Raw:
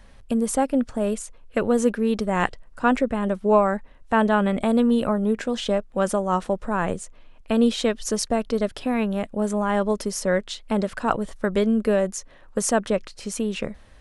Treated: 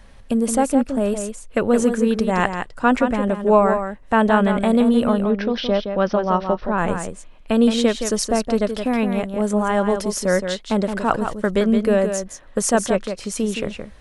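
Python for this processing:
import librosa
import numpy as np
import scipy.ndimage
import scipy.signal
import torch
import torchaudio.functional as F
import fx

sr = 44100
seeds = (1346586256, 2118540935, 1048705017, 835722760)

y = fx.steep_lowpass(x, sr, hz=5700.0, slope=96, at=(5.13, 6.78))
y = y + 10.0 ** (-7.5 / 20.0) * np.pad(y, (int(169 * sr / 1000.0), 0))[:len(y)]
y = y * 10.0 ** (3.0 / 20.0)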